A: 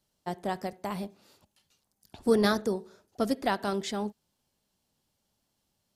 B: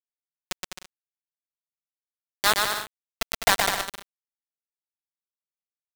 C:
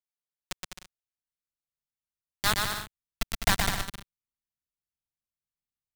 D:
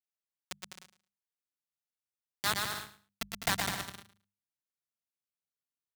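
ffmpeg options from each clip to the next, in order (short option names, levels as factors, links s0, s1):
-filter_complex "[0:a]highpass=f=680:w=0.5412,highpass=f=680:w=1.3066,acrusher=bits=3:mix=0:aa=0.000001,asplit=2[s0][s1];[s1]aecho=0:1:120|204|262.8|304|332.8:0.631|0.398|0.251|0.158|0.1[s2];[s0][s2]amix=inputs=2:normalize=0,volume=2.66"
-af "asubboost=boost=8.5:cutoff=180,volume=0.596"
-af "highpass=100,bandreject=f=50:t=h:w=6,bandreject=f=100:t=h:w=6,bandreject=f=150:t=h:w=6,bandreject=f=200:t=h:w=6,aecho=1:1:110|220:0.178|0.0285,volume=0.562"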